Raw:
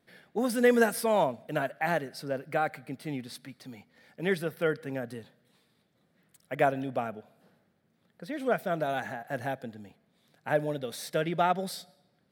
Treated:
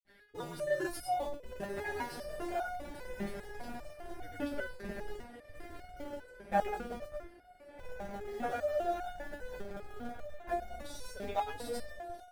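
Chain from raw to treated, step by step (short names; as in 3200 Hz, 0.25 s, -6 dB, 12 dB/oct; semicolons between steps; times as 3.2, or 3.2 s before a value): on a send: diffused feedback echo 1.387 s, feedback 53%, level -8.5 dB; on the sum: grains 0.1 s, grains 20/s, pitch spread up and down by 0 st; in parallel at -8 dB: Schmitt trigger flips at -33 dBFS; on the sum: ring modulator 89 Hz; low shelf 72 Hz +10.5 dB; stepped resonator 5 Hz 200–720 Hz; gain +8.5 dB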